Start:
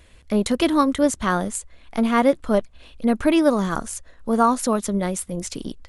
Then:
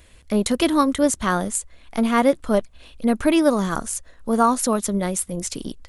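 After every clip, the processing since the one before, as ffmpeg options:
-af "highshelf=f=7k:g=7"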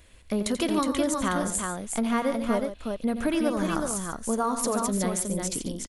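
-filter_complex "[0:a]acompressor=threshold=-19dB:ratio=4,asplit=2[a][b];[b]aecho=0:1:87|143|366:0.299|0.266|0.596[c];[a][c]amix=inputs=2:normalize=0,volume=-4dB"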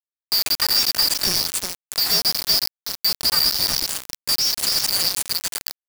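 -af "afftfilt=real='real(if(lt(b,272),68*(eq(floor(b/68),0)*1+eq(floor(b/68),1)*2+eq(floor(b/68),2)*3+eq(floor(b/68),3)*0)+mod(b,68),b),0)':imag='imag(if(lt(b,272),68*(eq(floor(b/68),0)*1+eq(floor(b/68),1)*2+eq(floor(b/68),2)*3+eq(floor(b/68),3)*0)+mod(b,68),b),0)':win_size=2048:overlap=0.75,acrusher=bits=3:mix=0:aa=0.000001,volume=4.5dB"

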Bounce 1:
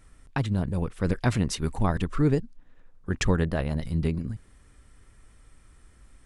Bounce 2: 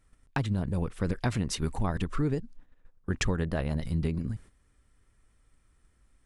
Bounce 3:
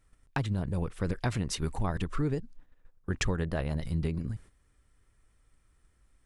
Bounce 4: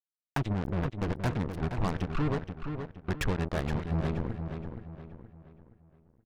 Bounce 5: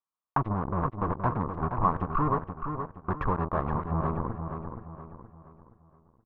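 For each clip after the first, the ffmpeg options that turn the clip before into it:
-af "agate=range=-11dB:threshold=-47dB:ratio=16:detection=peak,acompressor=threshold=-24dB:ratio=6"
-af "equalizer=f=230:t=o:w=0.47:g=-3.5,volume=-1dB"
-filter_complex "[0:a]adynamicsmooth=sensitivity=1:basefreq=2.8k,acrusher=bits=4:mix=0:aa=0.5,asplit=2[a][b];[b]adelay=472,lowpass=f=3.6k:p=1,volume=-7dB,asplit=2[c][d];[d]adelay=472,lowpass=f=3.6k:p=1,volume=0.4,asplit=2[e][f];[f]adelay=472,lowpass=f=3.6k:p=1,volume=0.4,asplit=2[g][h];[h]adelay=472,lowpass=f=3.6k:p=1,volume=0.4,asplit=2[i][j];[j]adelay=472,lowpass=f=3.6k:p=1,volume=0.4[k];[a][c][e][g][i][k]amix=inputs=6:normalize=0"
-af "lowpass=f=1.1k:t=q:w=6.3"

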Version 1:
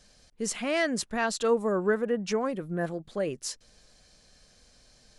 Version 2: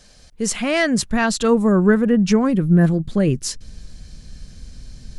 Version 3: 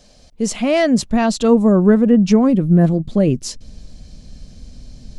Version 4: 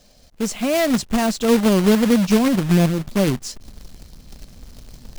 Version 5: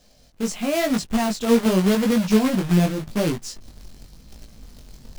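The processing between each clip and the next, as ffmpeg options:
-af "asubboost=boost=9.5:cutoff=210,volume=9dB"
-af "equalizer=f=250:t=o:w=0.67:g=5,equalizer=f=630:t=o:w=0.67:g=6,equalizer=f=1.6k:t=o:w=0.67:g=-7,equalizer=f=10k:t=o:w=0.67:g=-6"
-af "acrusher=bits=2:mode=log:mix=0:aa=0.000001,volume=-4dB"
-af "flanger=delay=18:depth=4:speed=0.9"

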